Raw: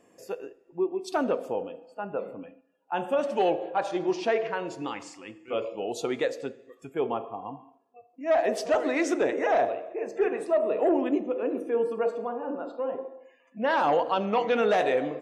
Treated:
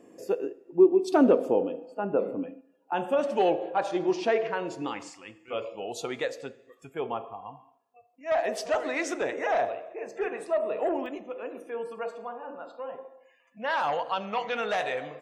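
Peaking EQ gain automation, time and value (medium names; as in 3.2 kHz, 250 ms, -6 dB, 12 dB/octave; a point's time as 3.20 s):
peaking EQ 310 Hz 1.6 oct
+10.5 dB
from 2.93 s +1 dB
from 5.10 s -6.5 dB
from 7.33 s -13.5 dB
from 8.32 s -7.5 dB
from 11.06 s -14 dB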